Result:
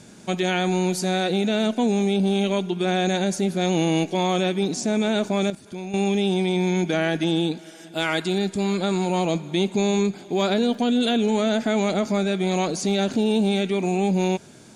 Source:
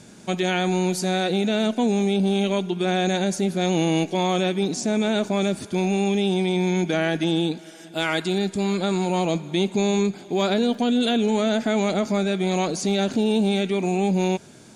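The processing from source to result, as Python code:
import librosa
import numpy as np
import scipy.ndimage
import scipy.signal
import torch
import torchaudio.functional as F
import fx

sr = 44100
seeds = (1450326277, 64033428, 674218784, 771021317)

y = fx.level_steps(x, sr, step_db=16, at=(5.5, 5.94))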